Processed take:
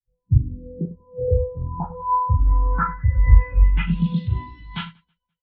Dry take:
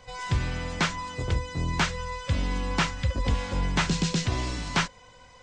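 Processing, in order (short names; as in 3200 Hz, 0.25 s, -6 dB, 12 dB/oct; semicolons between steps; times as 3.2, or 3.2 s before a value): 0.95–2.02 dispersion highs, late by 80 ms, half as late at 3000 Hz; reverse bouncing-ball echo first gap 40 ms, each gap 1.5×, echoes 5; low-pass sweep 290 Hz -> 3600 Hz, 0.28–4.18; spectral expander 2.5:1; gain +7 dB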